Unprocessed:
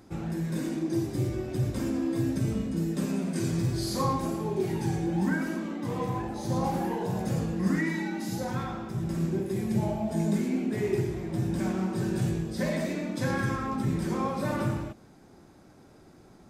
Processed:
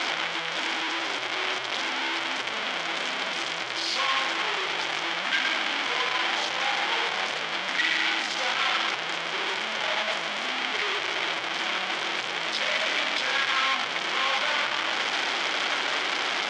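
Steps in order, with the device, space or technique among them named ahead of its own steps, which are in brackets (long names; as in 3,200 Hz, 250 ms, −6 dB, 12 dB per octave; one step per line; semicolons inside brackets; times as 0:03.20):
home computer beeper (sign of each sample alone; loudspeaker in its box 780–5,500 Hz, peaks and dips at 1,500 Hz +3 dB, 2,200 Hz +7 dB, 3,200 Hz +9 dB)
level +5.5 dB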